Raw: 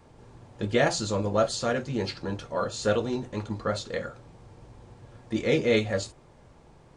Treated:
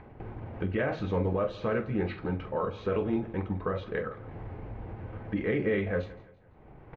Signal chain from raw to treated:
brickwall limiter −19.5 dBFS, peak gain reduction 9 dB
pitch shifter −1.5 semitones
noise gate with hold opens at −42 dBFS
upward compression, threshold −30 dBFS
Chebyshev low-pass filter 2,300 Hz, order 3
double-tracking delay 44 ms −12.5 dB
on a send: repeating echo 168 ms, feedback 42%, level −20 dB

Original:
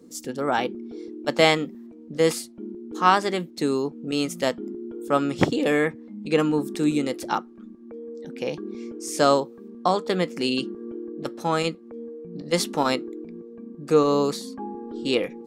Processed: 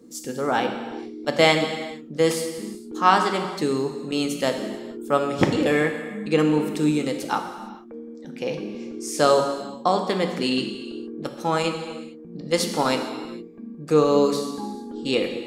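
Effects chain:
reverb whose tail is shaped and stops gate 480 ms falling, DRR 4.5 dB

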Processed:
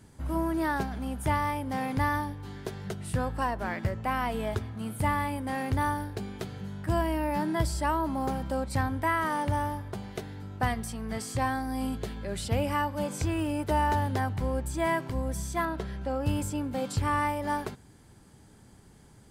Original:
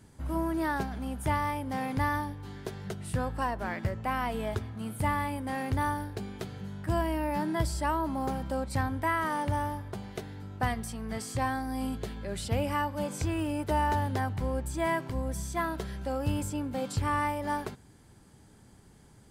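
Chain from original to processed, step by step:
0:15.65–0:16.26: low-pass filter 3,200 Hz 6 dB per octave
level +1.5 dB

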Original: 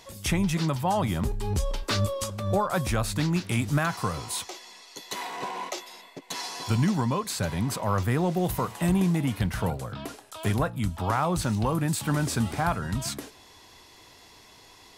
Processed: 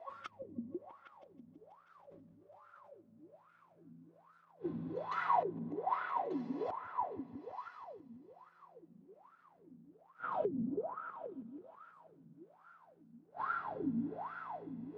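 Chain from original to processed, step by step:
low-pass that shuts in the quiet parts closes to 2,800 Hz, open at −22.5 dBFS
in parallel at −3 dB: downward compressor 4 to 1, threshold −35 dBFS, peak gain reduction 13 dB
on the sum: spring reverb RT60 3.2 s, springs 36/48 ms, chirp 65 ms, DRR −1 dB
gate with flip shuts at −18 dBFS, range −38 dB
bit reduction 10 bits
flanger 0.45 Hz, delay 1.4 ms, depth 5.9 ms, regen +73%
on a send: echo whose low-pass opens from repeat to repeat 162 ms, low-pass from 200 Hz, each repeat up 1 octave, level 0 dB
on the sum: LFO wah 1.2 Hz 230–1,400 Hz, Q 19
0:01.94–0:02.89: level that may fall only so fast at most 32 dB per second
level +16.5 dB

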